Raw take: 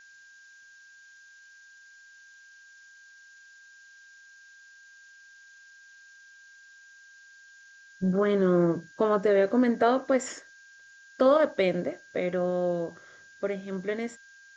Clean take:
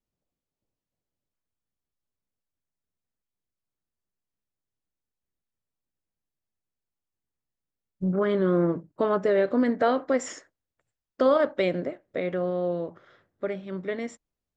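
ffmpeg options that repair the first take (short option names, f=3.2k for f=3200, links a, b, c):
-af "bandreject=f=1.6k:w=30,afftdn=nr=30:nf=-54"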